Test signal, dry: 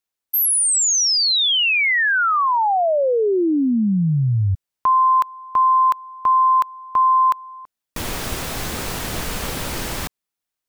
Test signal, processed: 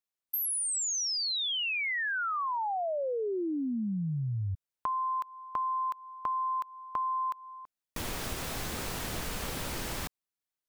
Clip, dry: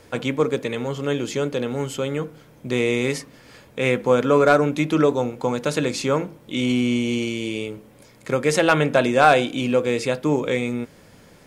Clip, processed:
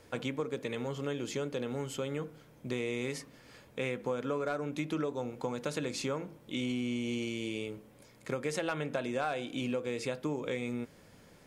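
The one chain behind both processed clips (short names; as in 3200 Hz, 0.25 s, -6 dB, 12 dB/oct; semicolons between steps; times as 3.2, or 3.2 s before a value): compressor 6:1, threshold -22 dBFS; gain -8.5 dB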